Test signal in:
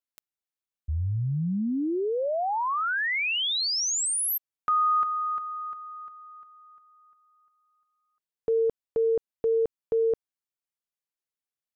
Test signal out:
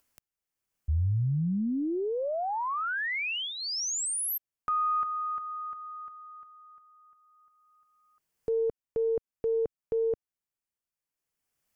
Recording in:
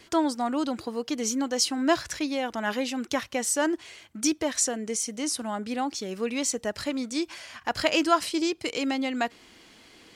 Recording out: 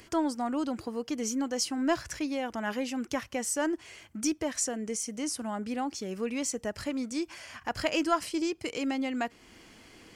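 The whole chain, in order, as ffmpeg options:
-filter_complex "[0:a]asplit=2[a][b];[b]acompressor=threshold=-37dB:ratio=6:attack=0.37:release=414:detection=peak,volume=-1dB[c];[a][c]amix=inputs=2:normalize=0,equalizer=f=3.8k:w=3.9:g=-8,acompressor=mode=upward:threshold=-51dB:ratio=2.5:attack=2.9:release=914:knee=2.83:detection=peak,lowshelf=f=160:g=7,aeval=exprs='0.422*(cos(1*acos(clip(val(0)/0.422,-1,1)))-cos(1*PI/2))+0.0335*(cos(2*acos(clip(val(0)/0.422,-1,1)))-cos(2*PI/2))+0.00473*(cos(4*acos(clip(val(0)/0.422,-1,1)))-cos(4*PI/2))':c=same,volume=-6dB"

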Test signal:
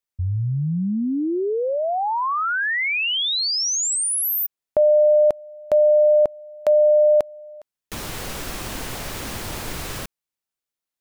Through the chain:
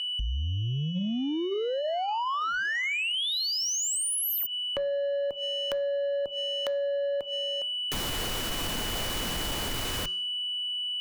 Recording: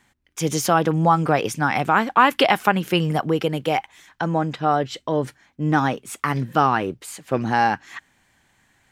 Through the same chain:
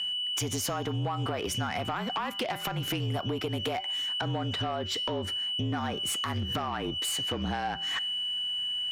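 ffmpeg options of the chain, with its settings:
-af "aeval=exprs='val(0)+0.0224*sin(2*PI*3000*n/s)':c=same,acompressor=threshold=-30dB:ratio=16:attack=11:release=112:knee=1:detection=rms,bandreject=f=206.1:t=h:w=4,bandreject=f=412.2:t=h:w=4,bandreject=f=618.3:t=h:w=4,bandreject=f=824.4:t=h:w=4,bandreject=f=1.0305k:t=h:w=4,bandreject=f=1.2366k:t=h:w=4,bandreject=f=1.4427k:t=h:w=4,bandreject=f=1.6488k:t=h:w=4,bandreject=f=1.8549k:t=h:w=4,bandreject=f=2.061k:t=h:w=4,bandreject=f=2.2671k:t=h:w=4,bandreject=f=2.4732k:t=h:w=4,bandreject=f=2.6793k:t=h:w=4,bandreject=f=2.8854k:t=h:w=4,bandreject=f=3.0915k:t=h:w=4,bandreject=f=3.2976k:t=h:w=4,bandreject=f=3.5037k:t=h:w=4,bandreject=f=3.7098k:t=h:w=4,bandreject=f=3.9159k:t=h:w=4,bandreject=f=4.122k:t=h:w=4,bandreject=f=4.3281k:t=h:w=4,bandreject=f=4.5342k:t=h:w=4,bandreject=f=4.7403k:t=h:w=4,bandreject=f=4.9464k:t=h:w=4,bandreject=f=5.1525k:t=h:w=4,bandreject=f=5.3586k:t=h:w=4,bandreject=f=5.5647k:t=h:w=4,bandreject=f=5.7708k:t=h:w=4,bandreject=f=5.9769k:t=h:w=4,bandreject=f=6.183k:t=h:w=4,bandreject=f=6.3891k:t=h:w=4,bandreject=f=6.5952k:t=h:w=4,bandreject=f=6.8013k:t=h:w=4,bandreject=f=7.0074k:t=h:w=4,afreqshift=-38,asoftclip=type=tanh:threshold=-28dB,volume=4.5dB"

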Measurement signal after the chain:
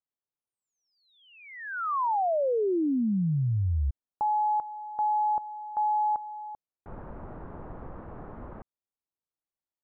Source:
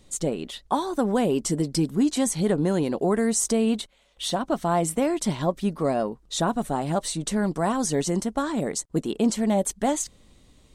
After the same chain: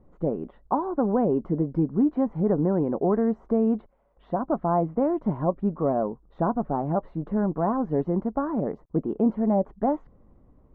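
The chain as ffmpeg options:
-af "lowpass=f=1.2k:w=0.5412,lowpass=f=1.2k:w=1.3066"

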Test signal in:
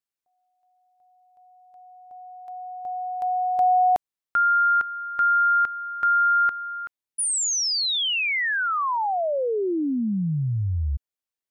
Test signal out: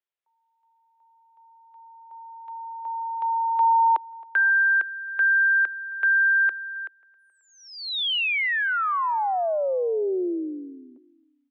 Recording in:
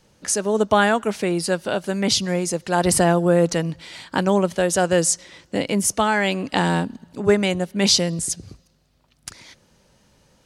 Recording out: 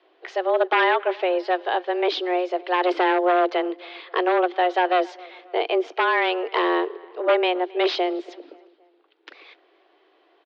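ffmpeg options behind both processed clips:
-filter_complex "[0:a]aeval=exprs='0.266*(abs(mod(val(0)/0.266+3,4)-2)-1)':c=same,asplit=2[a][b];[b]adelay=269,lowpass=f=2.8k:p=1,volume=-23dB,asplit=2[c][d];[d]adelay=269,lowpass=f=2.8k:p=1,volume=0.5,asplit=2[e][f];[f]adelay=269,lowpass=f=2.8k:p=1,volume=0.5[g];[a][c][e][g]amix=inputs=4:normalize=0,highpass=f=150:t=q:w=0.5412,highpass=f=150:t=q:w=1.307,lowpass=f=3.5k:t=q:w=0.5176,lowpass=f=3.5k:t=q:w=0.7071,lowpass=f=3.5k:t=q:w=1.932,afreqshift=180"

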